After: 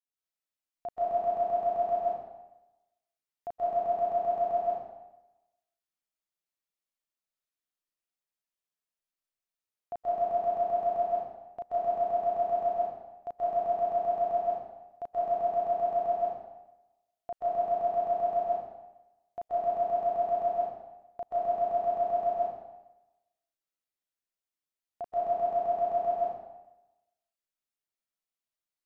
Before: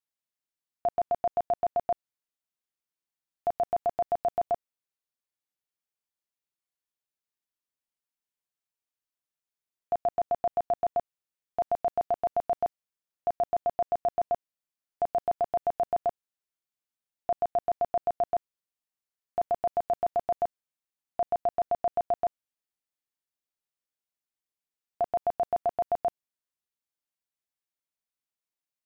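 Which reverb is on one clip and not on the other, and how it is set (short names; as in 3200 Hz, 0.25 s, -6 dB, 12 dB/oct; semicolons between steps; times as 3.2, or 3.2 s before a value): digital reverb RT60 1 s, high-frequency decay 0.9×, pre-delay 0.115 s, DRR -8 dB; gain -10.5 dB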